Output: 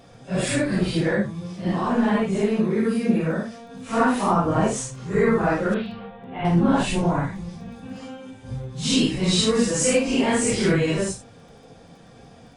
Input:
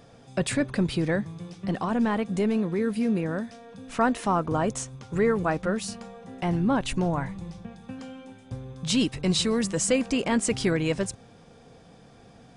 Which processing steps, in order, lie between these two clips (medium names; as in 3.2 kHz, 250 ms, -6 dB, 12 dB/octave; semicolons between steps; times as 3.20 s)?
phase randomisation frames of 200 ms; 5.74–6.45 s: steep low-pass 3.5 kHz 48 dB/octave; crackle 11 per s -48 dBFS; trim +4.5 dB